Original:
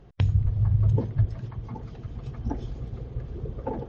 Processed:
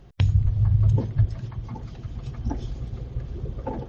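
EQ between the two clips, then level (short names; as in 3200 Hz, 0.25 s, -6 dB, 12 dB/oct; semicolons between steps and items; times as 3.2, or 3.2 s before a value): low shelf 140 Hz +3.5 dB; high shelf 3000 Hz +9 dB; notch 450 Hz, Q 12; 0.0 dB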